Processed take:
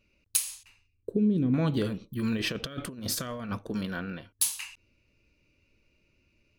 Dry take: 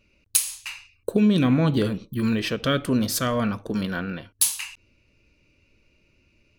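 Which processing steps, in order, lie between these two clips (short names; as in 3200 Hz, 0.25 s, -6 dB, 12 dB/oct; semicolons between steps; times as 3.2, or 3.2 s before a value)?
0.63–1.54 EQ curve 420 Hz 0 dB, 650 Hz -14 dB, 1100 Hz -18 dB; 2.37–3.59 negative-ratio compressor -27 dBFS, ratio -0.5; gain -6 dB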